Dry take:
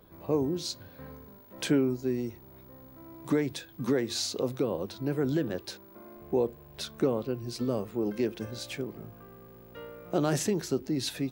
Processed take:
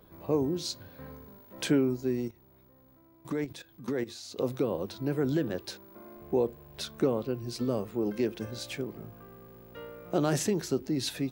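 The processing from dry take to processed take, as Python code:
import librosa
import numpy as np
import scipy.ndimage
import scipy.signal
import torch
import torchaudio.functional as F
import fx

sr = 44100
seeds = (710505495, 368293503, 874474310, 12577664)

y = fx.level_steps(x, sr, step_db=15, at=(2.28, 4.38))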